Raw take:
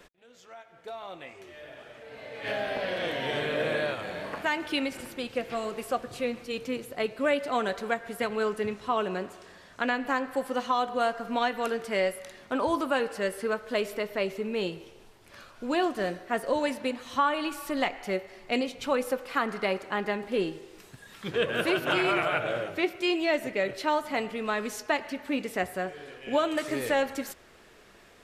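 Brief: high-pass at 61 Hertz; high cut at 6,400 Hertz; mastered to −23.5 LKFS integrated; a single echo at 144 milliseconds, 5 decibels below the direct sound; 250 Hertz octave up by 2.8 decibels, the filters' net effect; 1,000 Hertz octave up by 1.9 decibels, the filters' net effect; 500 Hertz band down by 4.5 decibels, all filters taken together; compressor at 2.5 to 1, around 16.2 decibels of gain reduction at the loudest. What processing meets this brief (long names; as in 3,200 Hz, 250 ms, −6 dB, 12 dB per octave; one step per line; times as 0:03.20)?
high-pass filter 61 Hz
low-pass filter 6,400 Hz
parametric band 250 Hz +6 dB
parametric band 500 Hz −9 dB
parametric band 1,000 Hz +5 dB
downward compressor 2.5 to 1, threshold −44 dBFS
single-tap delay 144 ms −5 dB
level +17.5 dB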